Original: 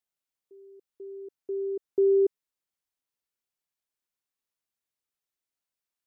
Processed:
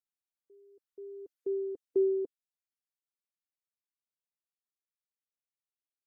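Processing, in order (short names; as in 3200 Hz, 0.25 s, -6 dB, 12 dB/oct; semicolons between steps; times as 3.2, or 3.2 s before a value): Doppler pass-by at 1.48, 8 m/s, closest 3.7 m; reverb removal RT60 1.1 s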